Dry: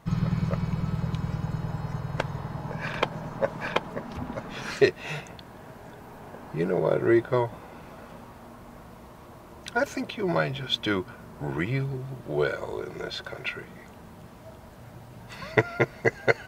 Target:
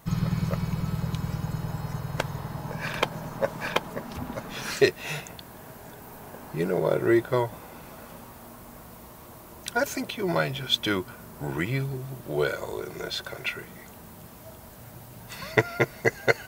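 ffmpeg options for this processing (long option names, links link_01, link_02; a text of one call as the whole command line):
ffmpeg -i in.wav -af "aemphasis=mode=production:type=50fm" out.wav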